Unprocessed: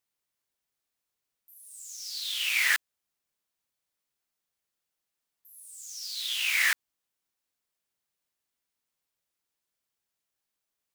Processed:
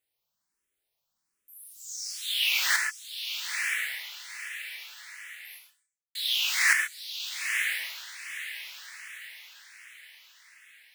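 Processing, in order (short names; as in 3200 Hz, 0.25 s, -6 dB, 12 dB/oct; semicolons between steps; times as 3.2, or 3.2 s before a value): 1.94–2.46 HPF 220 Hz; diffused feedback echo 0.988 s, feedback 40%, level -6 dB; 5.55–6.15 fade out exponential; non-linear reverb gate 0.16 s flat, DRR 3.5 dB; endless phaser +1.3 Hz; gain +4 dB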